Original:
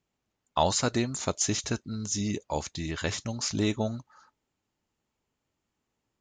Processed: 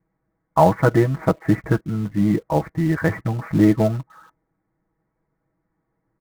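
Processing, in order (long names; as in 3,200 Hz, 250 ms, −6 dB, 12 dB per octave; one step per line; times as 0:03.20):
Butterworth low-pass 2,100 Hz 72 dB per octave
low-shelf EQ 430 Hz +5.5 dB
comb filter 6.2 ms, depth 95%
in parallel at −9 dB: log-companded quantiser 4 bits
on the sum: level +3.5 dB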